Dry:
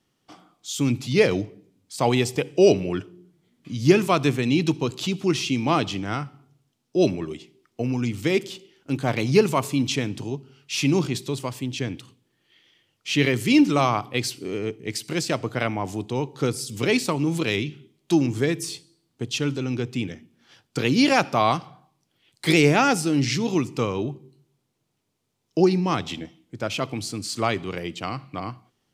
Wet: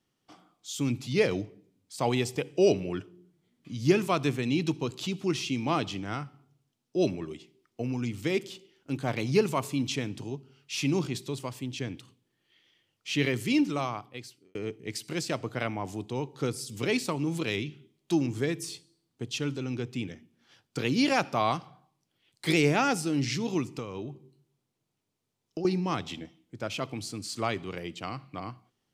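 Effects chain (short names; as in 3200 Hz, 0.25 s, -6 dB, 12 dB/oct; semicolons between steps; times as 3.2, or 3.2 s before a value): 13.36–14.55 fade out; 23.68–25.65 compressor 12:1, threshold -26 dBFS, peak gain reduction 13.5 dB; gain -6.5 dB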